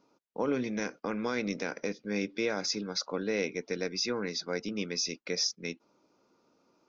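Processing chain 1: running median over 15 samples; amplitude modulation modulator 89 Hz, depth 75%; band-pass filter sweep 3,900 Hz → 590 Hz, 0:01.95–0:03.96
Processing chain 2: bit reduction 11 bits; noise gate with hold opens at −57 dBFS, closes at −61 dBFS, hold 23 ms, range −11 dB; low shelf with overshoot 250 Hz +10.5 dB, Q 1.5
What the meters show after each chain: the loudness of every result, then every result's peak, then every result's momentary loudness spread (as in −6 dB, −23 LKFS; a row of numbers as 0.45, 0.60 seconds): −50.0, −30.0 LKFS; −28.5, −15.0 dBFS; 13, 5 LU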